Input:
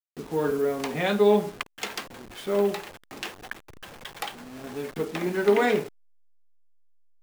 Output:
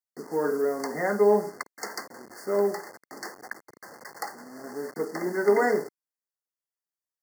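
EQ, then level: high-pass 250 Hz 12 dB/octave; brick-wall FIR band-stop 2.1–4.3 kHz; 0.0 dB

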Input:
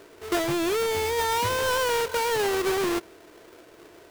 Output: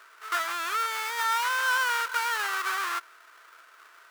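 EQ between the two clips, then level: resonant high-pass 1.3 kHz, resonance Q 4; -3.5 dB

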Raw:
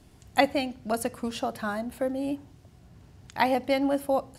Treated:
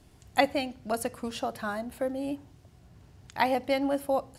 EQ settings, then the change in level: peaking EQ 220 Hz -2.5 dB 0.87 oct; -1.5 dB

